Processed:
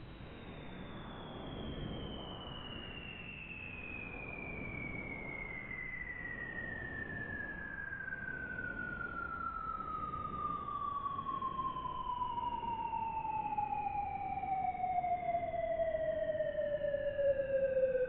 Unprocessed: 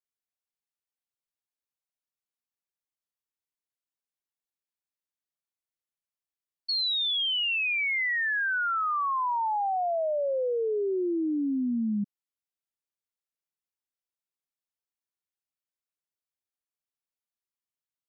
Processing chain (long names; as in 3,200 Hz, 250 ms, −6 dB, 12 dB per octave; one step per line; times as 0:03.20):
linear delta modulator 16 kbit/s, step −47 dBFS
extreme stretch with random phases 5.1×, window 0.25 s, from 0:06.88